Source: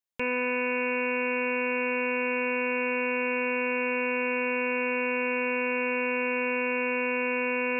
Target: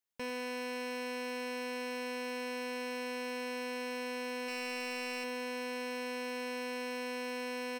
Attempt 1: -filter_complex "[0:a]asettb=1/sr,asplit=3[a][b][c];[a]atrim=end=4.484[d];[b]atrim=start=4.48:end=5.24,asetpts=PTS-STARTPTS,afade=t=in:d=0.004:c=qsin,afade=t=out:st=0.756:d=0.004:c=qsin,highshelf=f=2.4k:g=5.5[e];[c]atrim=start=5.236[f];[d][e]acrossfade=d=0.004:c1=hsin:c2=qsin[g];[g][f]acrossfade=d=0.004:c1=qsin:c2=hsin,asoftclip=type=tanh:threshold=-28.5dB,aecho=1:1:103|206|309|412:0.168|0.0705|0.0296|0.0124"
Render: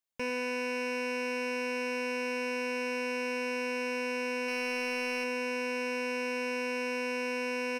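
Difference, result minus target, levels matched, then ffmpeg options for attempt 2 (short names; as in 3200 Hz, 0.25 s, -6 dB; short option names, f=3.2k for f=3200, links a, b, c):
soft clip: distortion -4 dB
-filter_complex "[0:a]asettb=1/sr,asplit=3[a][b][c];[a]atrim=end=4.484[d];[b]atrim=start=4.48:end=5.24,asetpts=PTS-STARTPTS,afade=t=in:d=0.004:c=qsin,afade=t=out:st=0.756:d=0.004:c=qsin,highshelf=f=2.4k:g=5.5[e];[c]atrim=start=5.236[f];[d][e]acrossfade=d=0.004:c1=hsin:c2=qsin[g];[g][f]acrossfade=d=0.004:c1=qsin:c2=hsin,asoftclip=type=tanh:threshold=-36dB,aecho=1:1:103|206|309|412:0.168|0.0705|0.0296|0.0124"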